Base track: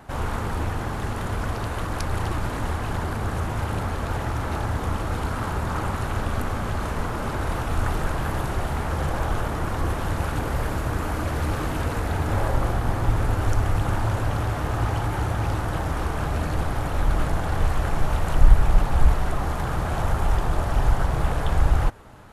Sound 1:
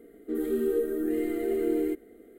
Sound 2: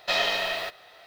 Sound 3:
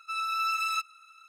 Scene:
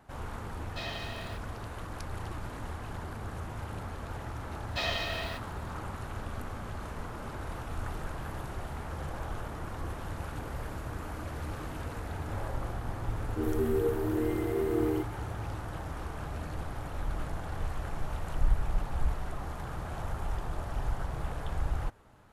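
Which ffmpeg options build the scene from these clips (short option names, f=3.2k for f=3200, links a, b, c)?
-filter_complex "[2:a]asplit=2[a][b];[0:a]volume=-12.5dB[c];[a]atrim=end=1.06,asetpts=PTS-STARTPTS,volume=-15dB,afade=t=in:d=0.004:c=hsin,afade=t=out:st=1.056:d=0.004:c=hsin,adelay=680[d];[b]atrim=end=1.06,asetpts=PTS-STARTPTS,volume=-8dB,afade=t=in:d=0.004:c=hsin,afade=t=out:st=1.056:d=0.004:c=hsin,adelay=4680[e];[1:a]atrim=end=2.38,asetpts=PTS-STARTPTS,volume=-2.5dB,afade=t=in:d=0.004:c=hsin,afade=t=out:st=2.376:d=0.004:c=hsin,adelay=13080[f];[c][d][e][f]amix=inputs=4:normalize=0"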